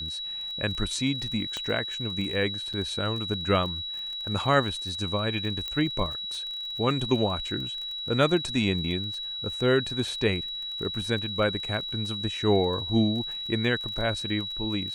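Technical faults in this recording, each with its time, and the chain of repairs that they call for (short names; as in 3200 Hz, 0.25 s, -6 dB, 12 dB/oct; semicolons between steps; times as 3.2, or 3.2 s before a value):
crackle 30/s -35 dBFS
tone 3900 Hz -32 dBFS
1.57 pop -18 dBFS
2.73–2.74 gap 6.5 ms
5.68 pop -18 dBFS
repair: de-click; notch 3900 Hz, Q 30; interpolate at 2.73, 6.5 ms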